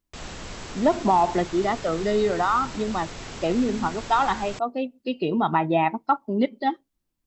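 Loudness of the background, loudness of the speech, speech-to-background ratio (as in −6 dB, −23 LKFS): −37.5 LKFS, −24.5 LKFS, 13.0 dB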